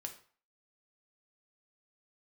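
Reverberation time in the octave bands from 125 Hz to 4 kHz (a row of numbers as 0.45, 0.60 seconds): 0.40, 0.40, 0.40, 0.50, 0.45, 0.35 seconds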